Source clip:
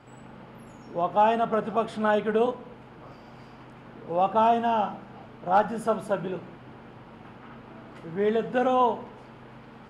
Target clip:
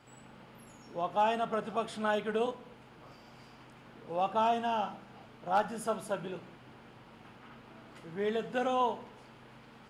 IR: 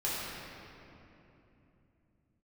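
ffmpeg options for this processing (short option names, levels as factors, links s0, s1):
-af "highshelf=f=2600:g=11.5,volume=0.376"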